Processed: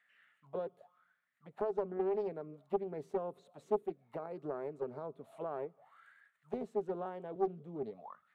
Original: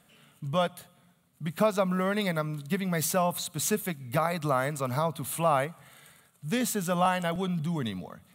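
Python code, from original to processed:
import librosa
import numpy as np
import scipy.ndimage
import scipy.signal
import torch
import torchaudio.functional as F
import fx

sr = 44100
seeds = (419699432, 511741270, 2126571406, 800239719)

y = fx.auto_wah(x, sr, base_hz=390.0, top_hz=1900.0, q=8.9, full_db=-27.0, direction='down')
y = fx.doppler_dist(y, sr, depth_ms=0.43)
y = F.gain(torch.from_numpy(y), 4.5).numpy()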